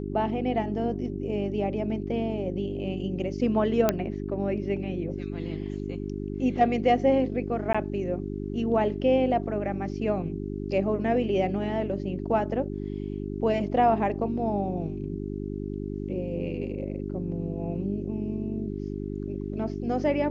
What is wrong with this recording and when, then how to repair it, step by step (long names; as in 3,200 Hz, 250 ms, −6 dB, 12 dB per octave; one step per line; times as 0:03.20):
mains hum 50 Hz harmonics 8 −33 dBFS
0:03.89: click −8 dBFS
0:07.73–0:07.75: drop-out 15 ms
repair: click removal
hum removal 50 Hz, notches 8
repair the gap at 0:07.73, 15 ms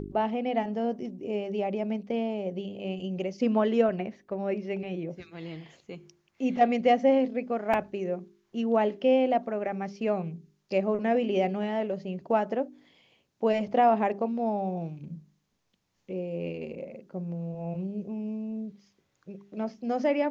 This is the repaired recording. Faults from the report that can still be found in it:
none of them is left